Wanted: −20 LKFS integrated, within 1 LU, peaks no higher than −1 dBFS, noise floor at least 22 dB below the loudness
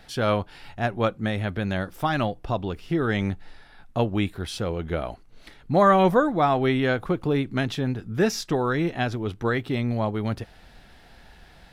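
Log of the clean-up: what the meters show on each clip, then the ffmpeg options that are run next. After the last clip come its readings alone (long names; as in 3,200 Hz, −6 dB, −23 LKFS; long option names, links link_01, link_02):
integrated loudness −25.0 LKFS; sample peak −7.0 dBFS; target loudness −20.0 LKFS
→ -af "volume=5dB"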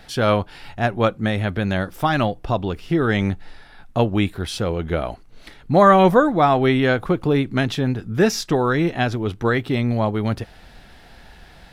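integrated loudness −20.0 LKFS; sample peak −2.0 dBFS; background noise floor −47 dBFS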